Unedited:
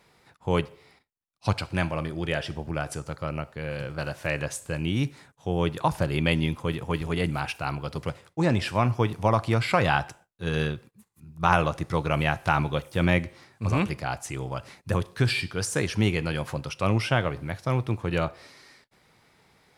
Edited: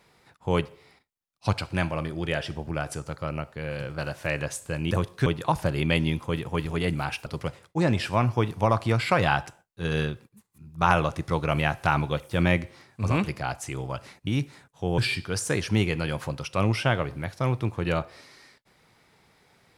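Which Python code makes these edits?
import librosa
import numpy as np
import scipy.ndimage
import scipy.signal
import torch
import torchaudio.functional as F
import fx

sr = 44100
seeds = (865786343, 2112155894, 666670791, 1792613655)

y = fx.edit(x, sr, fx.swap(start_s=4.91, length_s=0.71, other_s=14.89, other_length_s=0.35),
    fx.cut(start_s=7.62, length_s=0.26), tone=tone)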